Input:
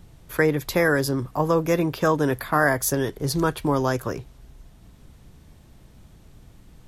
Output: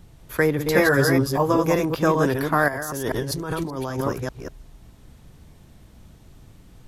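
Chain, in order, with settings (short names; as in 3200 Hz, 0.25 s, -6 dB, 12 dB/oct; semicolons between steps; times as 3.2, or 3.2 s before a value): reverse delay 0.195 s, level -4 dB; 0.73–1.66 doubler 15 ms -3 dB; 2.68–4.01 negative-ratio compressor -28 dBFS, ratio -1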